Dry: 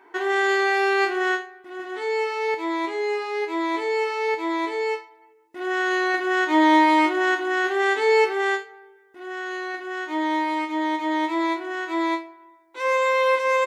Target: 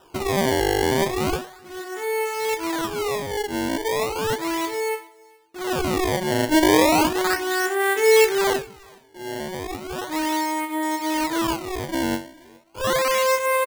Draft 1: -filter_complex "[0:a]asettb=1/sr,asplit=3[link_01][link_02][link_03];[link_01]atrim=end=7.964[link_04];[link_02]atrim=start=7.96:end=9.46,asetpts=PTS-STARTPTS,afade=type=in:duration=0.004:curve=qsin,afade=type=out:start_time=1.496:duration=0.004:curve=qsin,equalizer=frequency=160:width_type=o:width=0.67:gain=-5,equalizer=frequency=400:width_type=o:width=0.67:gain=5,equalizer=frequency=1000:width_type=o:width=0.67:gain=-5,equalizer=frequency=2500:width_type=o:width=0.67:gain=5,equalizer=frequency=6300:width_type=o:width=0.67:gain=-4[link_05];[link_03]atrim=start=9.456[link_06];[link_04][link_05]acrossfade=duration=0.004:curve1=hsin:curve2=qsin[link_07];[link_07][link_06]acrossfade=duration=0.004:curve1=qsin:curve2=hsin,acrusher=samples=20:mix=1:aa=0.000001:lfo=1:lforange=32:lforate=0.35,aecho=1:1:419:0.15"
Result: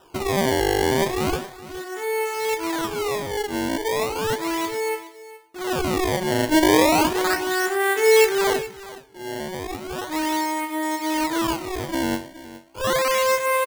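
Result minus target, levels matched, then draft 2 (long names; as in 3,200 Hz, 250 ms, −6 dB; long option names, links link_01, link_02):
echo-to-direct +10.5 dB
-filter_complex "[0:a]asettb=1/sr,asplit=3[link_01][link_02][link_03];[link_01]atrim=end=7.964[link_04];[link_02]atrim=start=7.96:end=9.46,asetpts=PTS-STARTPTS,afade=type=in:duration=0.004:curve=qsin,afade=type=out:start_time=1.496:duration=0.004:curve=qsin,equalizer=frequency=160:width_type=o:width=0.67:gain=-5,equalizer=frequency=400:width_type=o:width=0.67:gain=5,equalizer=frequency=1000:width_type=o:width=0.67:gain=-5,equalizer=frequency=2500:width_type=o:width=0.67:gain=5,equalizer=frequency=6300:width_type=o:width=0.67:gain=-4[link_05];[link_03]atrim=start=9.456[link_06];[link_04][link_05]acrossfade=duration=0.004:curve1=hsin:curve2=qsin[link_07];[link_07][link_06]acrossfade=duration=0.004:curve1=qsin:curve2=hsin,acrusher=samples=20:mix=1:aa=0.000001:lfo=1:lforange=32:lforate=0.35,aecho=1:1:419:0.0447"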